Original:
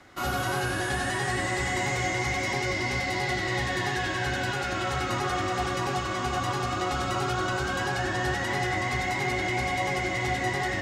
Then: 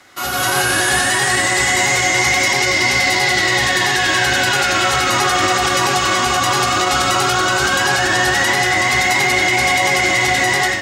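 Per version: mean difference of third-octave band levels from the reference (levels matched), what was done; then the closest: 5.0 dB: tilt EQ +2.5 dB/octave; level rider gain up to 12 dB; peak limiter -11.5 dBFS, peak gain reduction 7 dB; trim +5 dB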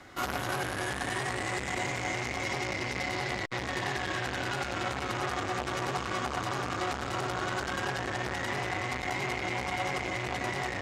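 2.0 dB: gain riding; buffer glitch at 3.45 s, samples 256, times 8; transformer saturation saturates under 1.5 kHz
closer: second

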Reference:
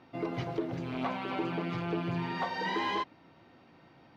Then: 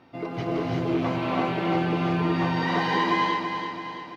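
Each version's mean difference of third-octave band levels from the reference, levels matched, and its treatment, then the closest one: 6.0 dB: on a send: feedback delay 333 ms, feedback 53%, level -7 dB; on the sum: gated-style reverb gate 390 ms rising, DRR -3.5 dB; trim +2.5 dB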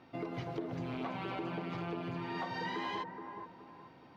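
3.0 dB: compression, threshold -35 dBFS, peak gain reduction 8 dB; on a send: bucket-brigade echo 422 ms, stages 4096, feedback 35%, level -7 dB; on the sum: trim -1 dB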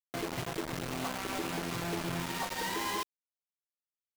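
11.5 dB: compression 2.5:1, threshold -40 dBFS, peak gain reduction 8.5 dB; companded quantiser 2-bit; trim -5 dB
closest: second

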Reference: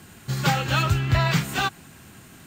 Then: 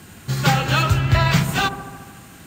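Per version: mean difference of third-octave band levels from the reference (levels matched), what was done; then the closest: 2.0 dB: feedback echo behind a low-pass 73 ms, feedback 72%, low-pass 990 Hz, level -9 dB; trim +4 dB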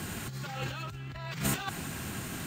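12.0 dB: peak limiter -19.5 dBFS, peak gain reduction 10.5 dB; compressor with a negative ratio -34 dBFS, ratio -0.5; trim +1 dB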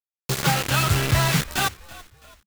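7.5 dB: bit crusher 4-bit; on a send: frequency-shifting echo 331 ms, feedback 43%, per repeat -67 Hz, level -20 dB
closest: first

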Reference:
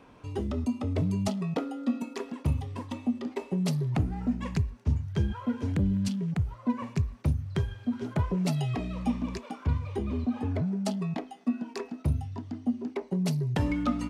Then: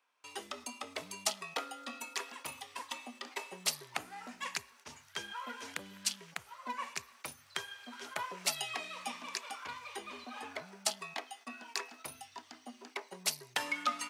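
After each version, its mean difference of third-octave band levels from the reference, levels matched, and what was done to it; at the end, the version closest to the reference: 14.0 dB: gate with hold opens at -43 dBFS; high-pass 1.2 kHz 12 dB/octave; treble shelf 6.1 kHz +7.5 dB; trim +4.5 dB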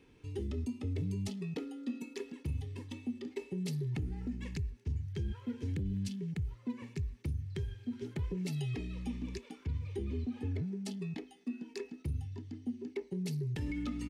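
3.5 dB: high-order bell 870 Hz -12.5 dB; comb 2.3 ms, depth 37%; peak limiter -23 dBFS, peak gain reduction 8 dB; trim -5.5 dB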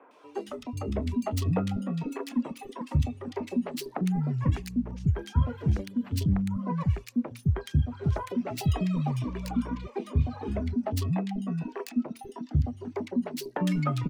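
8.0 dB: tracing distortion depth 0.12 ms; reverb removal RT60 0.73 s; three bands offset in time mids, highs, lows 110/490 ms, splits 320/2000 Hz; trim +3 dB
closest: second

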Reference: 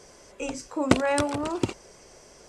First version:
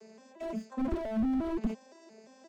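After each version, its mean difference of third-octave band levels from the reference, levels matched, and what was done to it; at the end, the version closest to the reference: 8.0 dB: vocoder on a broken chord minor triad, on A3, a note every 174 ms; comb 5 ms, depth 77%; slew-rate limiter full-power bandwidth 11 Hz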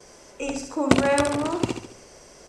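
3.0 dB: hum notches 50/100 Hz; on a send: feedback delay 70 ms, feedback 44%, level -6 dB; on the sum: gate with hold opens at -44 dBFS; trim +2 dB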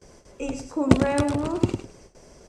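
5.0 dB: feedback delay 103 ms, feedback 19%, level -7.5 dB; gate with hold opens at -40 dBFS; bass shelf 400 Hz +11.5 dB; trim -3.5 dB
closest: second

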